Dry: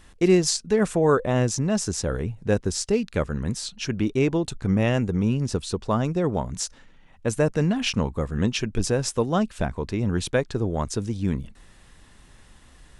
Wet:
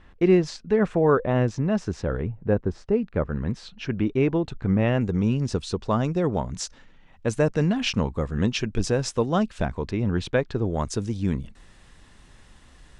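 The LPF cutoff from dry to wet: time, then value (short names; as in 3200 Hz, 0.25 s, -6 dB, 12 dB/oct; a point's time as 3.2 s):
2500 Hz
from 2.27 s 1400 Hz
from 3.29 s 2600 Hz
from 5.01 s 6400 Hz
from 9.91 s 3900 Hz
from 10.65 s 8500 Hz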